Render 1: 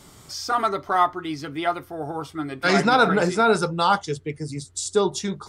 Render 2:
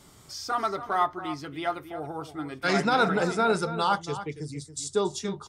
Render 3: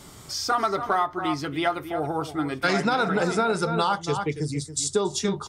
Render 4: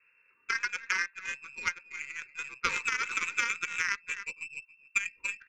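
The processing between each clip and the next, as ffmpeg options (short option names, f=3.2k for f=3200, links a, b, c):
-filter_complex "[0:a]asplit=2[a][b];[b]adelay=279.9,volume=-12dB,highshelf=f=4k:g=-6.3[c];[a][c]amix=inputs=2:normalize=0,volume=-5.5dB"
-af "acompressor=threshold=-27dB:ratio=12,volume=8dB"
-af "lowpass=f=2.4k:t=q:w=0.5098,lowpass=f=2.4k:t=q:w=0.6013,lowpass=f=2.4k:t=q:w=0.9,lowpass=f=2.4k:t=q:w=2.563,afreqshift=-2800,aeval=exprs='0.316*(cos(1*acos(clip(val(0)/0.316,-1,1)))-cos(1*PI/2))+0.0891*(cos(3*acos(clip(val(0)/0.316,-1,1)))-cos(3*PI/2))+0.00891*(cos(4*acos(clip(val(0)/0.316,-1,1)))-cos(4*PI/2))+0.00631*(cos(6*acos(clip(val(0)/0.316,-1,1)))-cos(6*PI/2))+0.002*(cos(7*acos(clip(val(0)/0.316,-1,1)))-cos(7*PI/2))':c=same,asuperstop=centerf=700:order=12:qfactor=1.9"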